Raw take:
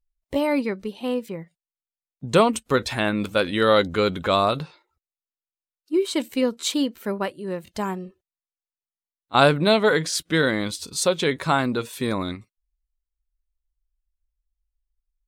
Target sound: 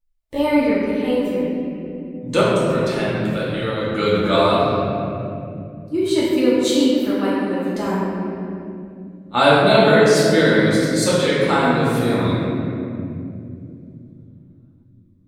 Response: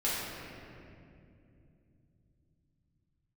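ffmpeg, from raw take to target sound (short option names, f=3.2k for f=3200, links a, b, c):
-filter_complex "[0:a]asettb=1/sr,asplit=3[a][b][c];[a]atrim=end=2.404[d];[b]atrim=start=2.4:end=3.96,asetpts=PTS-STARTPTS,afade=t=in:d=0.004:c=qsin,afade=t=out:st=1.556:d=0.004:c=qsin,acompressor=threshold=-25dB:ratio=10[e];[c]atrim=start=3.956[f];[d][e]acrossfade=d=0.004:c1=hsin:c2=qsin[g];[g][f]acrossfade=d=0.004:c1=qsin:c2=hsin[h];[1:a]atrim=start_sample=2205[i];[h][i]afir=irnorm=-1:irlink=0,volume=-3.5dB"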